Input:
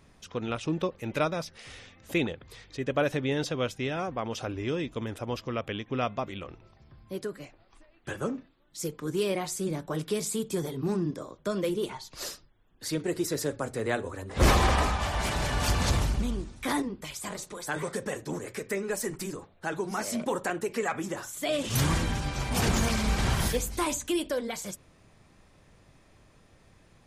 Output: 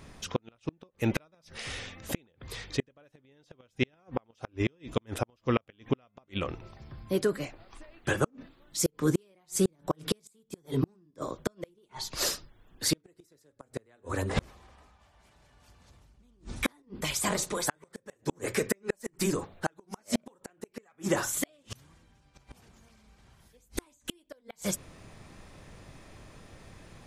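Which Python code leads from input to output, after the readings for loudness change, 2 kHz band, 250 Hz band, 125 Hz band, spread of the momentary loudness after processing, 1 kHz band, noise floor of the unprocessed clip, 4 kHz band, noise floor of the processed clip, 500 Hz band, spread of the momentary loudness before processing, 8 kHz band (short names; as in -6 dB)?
-2.5 dB, -4.5 dB, -2.5 dB, -5.5 dB, 22 LU, -7.5 dB, -60 dBFS, -3.0 dB, -70 dBFS, -4.0 dB, 11 LU, -0.5 dB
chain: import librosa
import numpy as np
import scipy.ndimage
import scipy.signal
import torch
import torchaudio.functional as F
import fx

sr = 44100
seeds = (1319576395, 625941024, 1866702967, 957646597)

y = fx.gate_flip(x, sr, shuts_db=-22.0, range_db=-41)
y = y * librosa.db_to_amplitude(8.0)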